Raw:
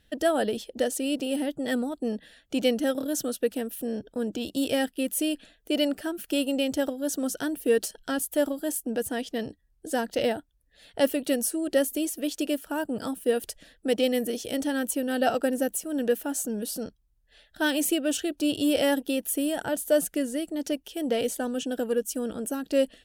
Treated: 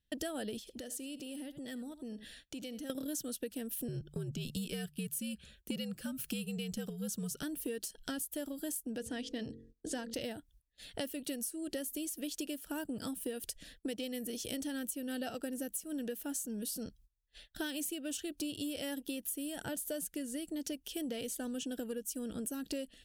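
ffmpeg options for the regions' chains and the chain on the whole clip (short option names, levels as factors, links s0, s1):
-filter_complex "[0:a]asettb=1/sr,asplit=3[s0][s1][s2];[s0]atrim=end=0.594[s3];[s1]atrim=start=0.59:end=2.9,asetpts=PTS-STARTPTS,afade=t=in:d=0.004:c=qsin,afade=t=out:st=2.306:d=0.004:c=qsin,aecho=1:1:76:0.112,atrim=end_sample=101871,acompressor=threshold=0.00501:ratio=3:attack=3.2:release=140:knee=1:detection=peak[s4];[s2]atrim=start=2.896[s5];[s3][s4]acrossfade=d=0.004:c1=hsin:c2=qsin[s6];[s6][s5]acrossfade=d=0.004:c1=qsin:c2=hsin,asettb=1/sr,asplit=3[s7][s8][s9];[s7]atrim=end=3.884[s10];[s8]atrim=start=3.88:end=7.43,asetpts=PTS-STARTPTS,afade=t=in:d=0.004:c=qsin,afade=t=out:st=3.546:d=0.004:c=qsin,bandreject=f=114.1:t=h:w=4,bandreject=f=228.2:t=h:w=4,afreqshift=-81[s11];[s9]atrim=start=7.426[s12];[s10][s11]acrossfade=d=0.004:c1=hsin:c2=qsin[s13];[s13][s12]acrossfade=d=0.004:c1=qsin:c2=hsin,asettb=1/sr,asplit=3[s14][s15][s16];[s14]atrim=end=8.984[s17];[s15]atrim=start=8.98:end=10.14,asetpts=PTS-STARTPTS,afade=t=in:d=0.004:c=qsin,afade=t=out:st=1.156:d=0.004:c=qsin,lowpass=6500,bandreject=f=45.46:t=h:w=4,bandreject=f=90.92:t=h:w=4,bandreject=f=136.38:t=h:w=4,bandreject=f=181.84:t=h:w=4,bandreject=f=227.3:t=h:w=4,bandreject=f=272.76:t=h:w=4,bandreject=f=318.22:t=h:w=4,bandreject=f=363.68:t=h:w=4,bandreject=f=409.14:t=h:w=4,bandreject=f=454.6:t=h:w=4,bandreject=f=500.06:t=h:w=4[s18];[s16]atrim=start=10.136[s19];[s17][s18]acrossfade=d=0.004:c1=hsin:c2=qsin[s20];[s20][s19]acrossfade=d=0.004:c1=qsin:c2=hsin,agate=range=0.0794:threshold=0.00141:ratio=16:detection=peak,equalizer=f=790:w=0.45:g=-11,acompressor=threshold=0.00891:ratio=12,volume=1.78"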